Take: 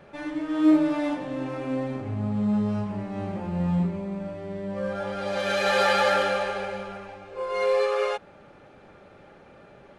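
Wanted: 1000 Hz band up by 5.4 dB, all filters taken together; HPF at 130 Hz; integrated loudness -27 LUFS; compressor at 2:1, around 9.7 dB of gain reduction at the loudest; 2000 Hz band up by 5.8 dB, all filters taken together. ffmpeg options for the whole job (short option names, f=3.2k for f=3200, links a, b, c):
-af "highpass=130,equalizer=f=1k:t=o:g=5.5,equalizer=f=2k:t=o:g=5.5,acompressor=threshold=-32dB:ratio=2,volume=4dB"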